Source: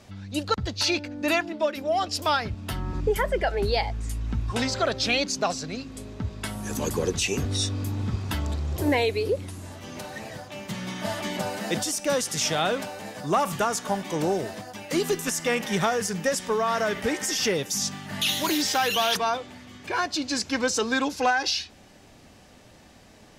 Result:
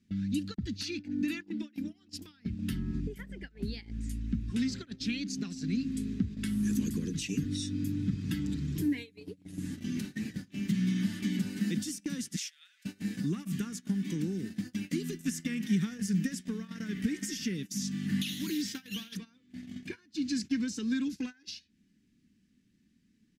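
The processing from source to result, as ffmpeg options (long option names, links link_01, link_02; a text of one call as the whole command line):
ffmpeg -i in.wav -filter_complex "[0:a]asettb=1/sr,asplit=3[link_01][link_02][link_03];[link_01]atrim=end=7.094[link_04];[link_02]atrim=start=7.09:end=9.77,asetpts=PTS-STARTPTS,afade=type=in:duration=0.004:curve=qsin,afade=type=out:start_time=2.676:duration=0.004:curve=qsin,aecho=1:1:6.7:0.65,atrim=end_sample=118188[link_05];[link_03]atrim=start=9.766[link_06];[link_04][link_05]acrossfade=duration=0.004:curve1=hsin:curve2=qsin[link_07];[link_07][link_06]acrossfade=duration=0.004:curve1=qsin:curve2=hsin,asettb=1/sr,asplit=3[link_08][link_09][link_10];[link_08]atrim=end=12.364[link_11];[link_09]atrim=start=12.36:end=12.85,asetpts=PTS-STARTPTS,afade=type=in:duration=0.004:curve=qsin,afade=type=out:start_time=0.486:duration=0.004:curve=qsin,highpass=frequency=1500:width=0.5412,highpass=frequency=1500:width=1.3066[link_12];[link_10]atrim=start=12.846[link_13];[link_11][link_12]acrossfade=duration=0.004:curve1=hsin:curve2=qsin[link_14];[link_14][link_13]acrossfade=duration=0.004:curve1=qsin:curve2=hsin,acompressor=threshold=-34dB:ratio=4,firequalizer=gain_entry='entry(120,0);entry(190,12);entry(260,9);entry(620,-29);entry(1700,-3)':delay=0.05:min_phase=1,agate=range=-21dB:threshold=-37dB:ratio=16:detection=peak" out.wav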